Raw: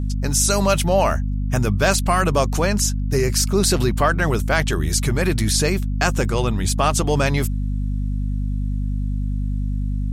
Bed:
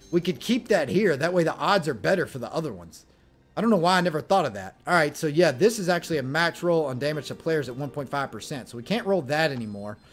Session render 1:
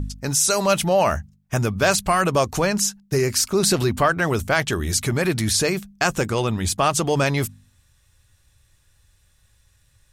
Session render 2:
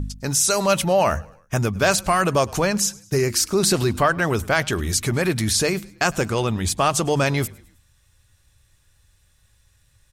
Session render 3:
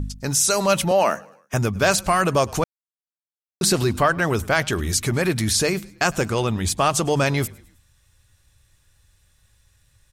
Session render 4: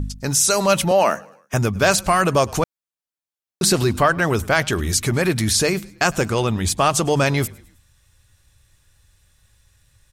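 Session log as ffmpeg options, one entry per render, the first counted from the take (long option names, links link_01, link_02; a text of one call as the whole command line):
ffmpeg -i in.wav -af "bandreject=frequency=50:width_type=h:width=4,bandreject=frequency=100:width_type=h:width=4,bandreject=frequency=150:width_type=h:width=4,bandreject=frequency=200:width_type=h:width=4,bandreject=frequency=250:width_type=h:width=4" out.wav
ffmpeg -i in.wav -filter_complex "[0:a]asplit=4[link_01][link_02][link_03][link_04];[link_02]adelay=105,afreqshift=-33,volume=-24dB[link_05];[link_03]adelay=210,afreqshift=-66,volume=-30.2dB[link_06];[link_04]adelay=315,afreqshift=-99,volume=-36.4dB[link_07];[link_01][link_05][link_06][link_07]amix=inputs=4:normalize=0" out.wav
ffmpeg -i in.wav -filter_complex "[0:a]asettb=1/sr,asplit=3[link_01][link_02][link_03];[link_01]atrim=end=0.914[link_04];[link_02]atrim=start=0.91:end=1.54,asetpts=PTS-STARTPTS,afade=type=in:duration=0.004:curve=qsin,afade=type=out:start_time=0.626:duration=0.004:curve=qsin,highpass=frequency=200:width=0.5412,highpass=frequency=200:width=1.3066[link_05];[link_03]atrim=start=1.536[link_06];[link_04][link_05]acrossfade=duration=0.004:curve1=hsin:curve2=qsin[link_07];[link_07][link_06]acrossfade=duration=0.004:curve1=qsin:curve2=hsin,asplit=3[link_08][link_09][link_10];[link_08]atrim=end=2.64,asetpts=PTS-STARTPTS,afade=type=out:start_time=2.636:duration=0.004:curve=hsin[link_11];[link_09]atrim=start=2.64:end=3.61,asetpts=PTS-STARTPTS,volume=0[link_12];[link_10]atrim=start=3.61,asetpts=PTS-STARTPTS,afade=type=in:duration=0.004:curve=hsin[link_13];[link_11][link_12][link_13]concat=n=3:v=0:a=1" out.wav
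ffmpeg -i in.wav -af "volume=2dB" out.wav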